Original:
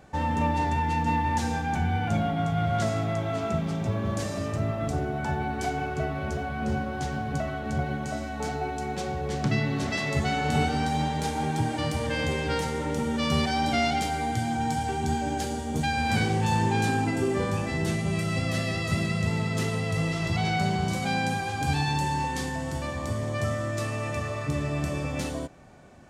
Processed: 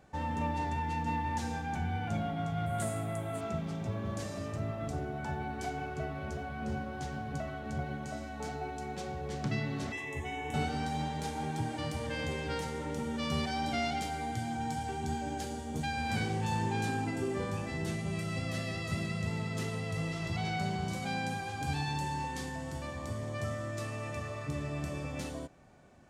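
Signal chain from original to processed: 2.66–3.41 resonant high shelf 7200 Hz +10.5 dB, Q 3; 9.92–10.54 fixed phaser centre 920 Hz, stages 8; gain -8 dB

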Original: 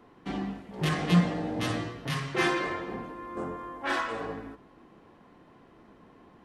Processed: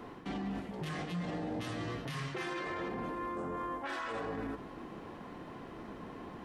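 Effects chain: reverse; compressor 6:1, threshold -38 dBFS, peak gain reduction 19.5 dB; reverse; limiter -39.5 dBFS, peak gain reduction 11.5 dB; gain +9 dB

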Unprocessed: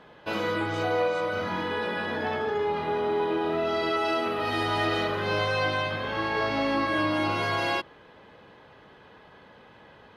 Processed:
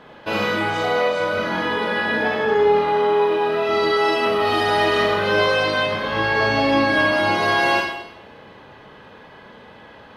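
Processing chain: 2.79–3.69 low shelf 400 Hz -7 dB; Schroeder reverb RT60 0.82 s, combs from 28 ms, DRR 1 dB; gain +6 dB

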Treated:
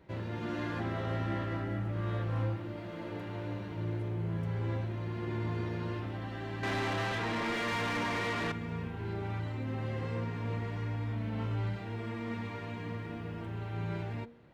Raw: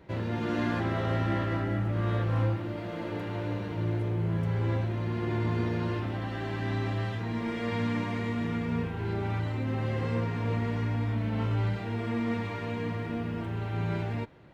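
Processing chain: de-hum 234.6 Hz, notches 3; 6.63–8.52 overdrive pedal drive 27 dB, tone 3200 Hz, clips at -20.5 dBFS; gain -5.5 dB

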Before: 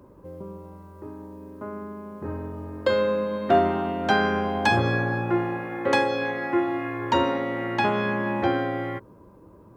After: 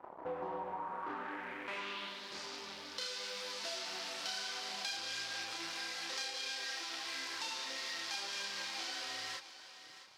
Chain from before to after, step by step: in parallel at -5.5 dB: fuzz box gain 41 dB, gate -47 dBFS; on the sum: chorus voices 6, 0.8 Hz, delay 30 ms, depth 3.5 ms; band-pass sweep 880 Hz -> 5100 Hz, 0.7–2.3; compressor 4:1, threshold -38 dBFS, peak gain reduction 9 dB; on a send: thinning echo 0.639 s, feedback 37%, high-pass 420 Hz, level -13 dB; on the sum: speed mistake 25 fps video run at 24 fps

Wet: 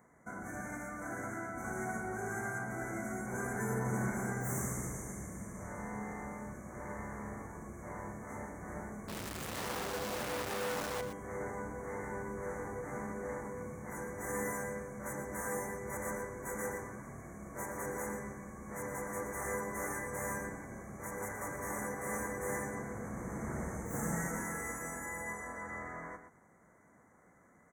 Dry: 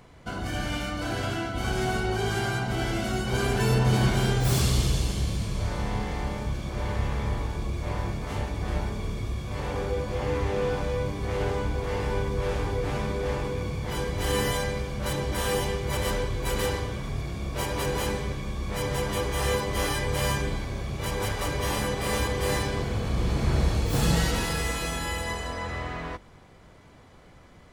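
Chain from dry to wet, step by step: Chebyshev band-stop 2100–6100 Hz, order 5; bell 210 Hz +8 dB 0.8 oct; 9.08–11.01 companded quantiser 2-bit; HPF 120 Hz 6 dB/oct; low shelf 390 Hz -10.5 dB; de-hum 402.6 Hz, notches 8; on a send: echo 0.119 s -9.5 dB; on the sum: gain -7 dB

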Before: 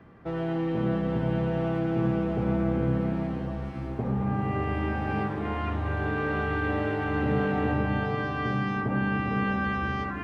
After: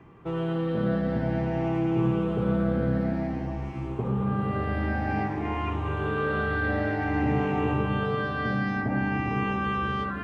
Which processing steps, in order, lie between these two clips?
moving spectral ripple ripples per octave 0.7, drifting +0.53 Hz, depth 8 dB

